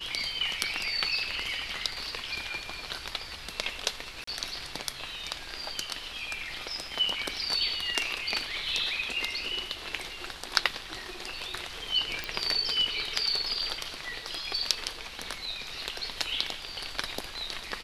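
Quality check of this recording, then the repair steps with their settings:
4.24–4.27 gap 34 ms
12.24 pop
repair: de-click; interpolate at 4.24, 34 ms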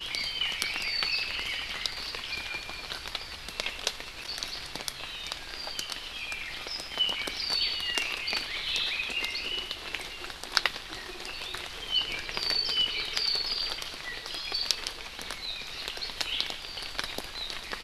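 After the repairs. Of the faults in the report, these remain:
12.24 pop

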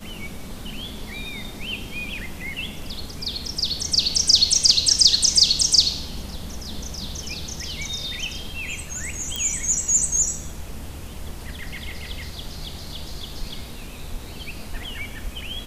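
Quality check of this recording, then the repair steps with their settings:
9.36 pop -10 dBFS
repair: de-click

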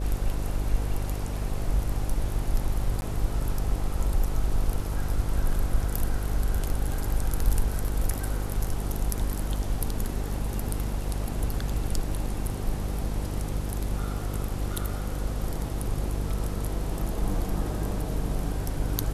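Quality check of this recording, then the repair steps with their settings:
buzz 50 Hz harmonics 11 -31 dBFS
3.01–3.02 gap 11 ms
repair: de-hum 50 Hz, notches 11; interpolate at 3.01, 11 ms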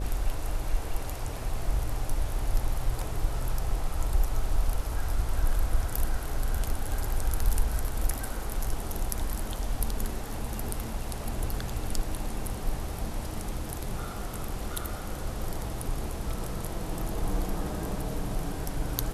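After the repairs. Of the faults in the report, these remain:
none

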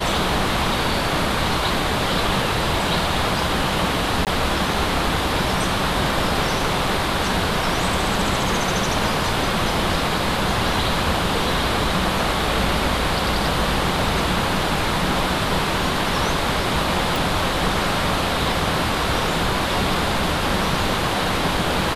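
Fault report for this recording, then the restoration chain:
4.25–4.27 gap 18 ms
17.16 pop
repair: de-click; interpolate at 4.25, 18 ms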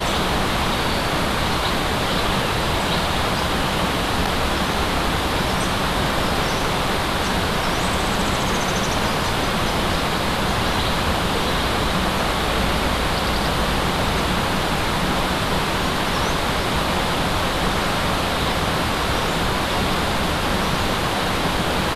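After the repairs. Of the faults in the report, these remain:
none

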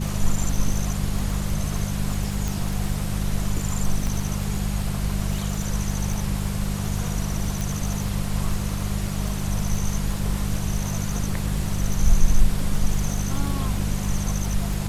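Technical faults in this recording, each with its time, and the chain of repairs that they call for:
crackle 22/s -26 dBFS
hum 50 Hz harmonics 4 -27 dBFS
2.48 pop
4.07 pop
7.61 pop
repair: de-click; de-hum 50 Hz, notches 4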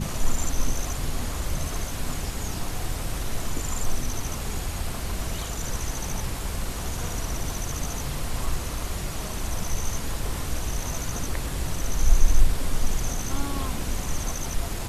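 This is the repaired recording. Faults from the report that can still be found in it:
none

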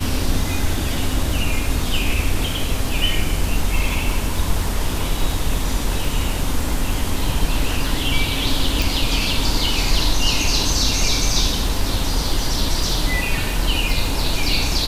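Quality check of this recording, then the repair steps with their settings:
crackle 21/s -24 dBFS
8.82 pop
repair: de-click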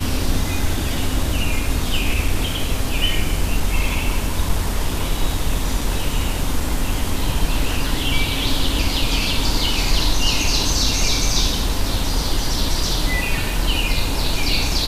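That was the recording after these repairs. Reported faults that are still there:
none

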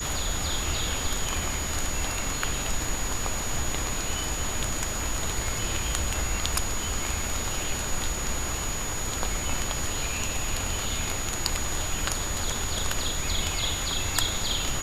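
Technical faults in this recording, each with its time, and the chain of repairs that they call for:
tone 6800 Hz -33 dBFS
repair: notch 6800 Hz, Q 30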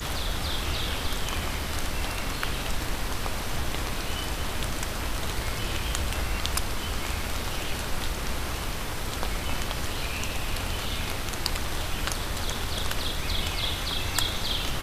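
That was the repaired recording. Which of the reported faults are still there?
none

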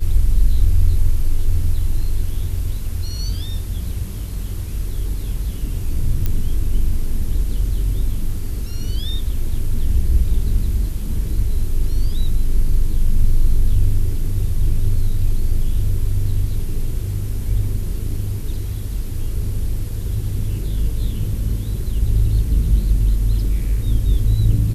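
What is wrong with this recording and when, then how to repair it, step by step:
6.26 pop -8 dBFS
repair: de-click

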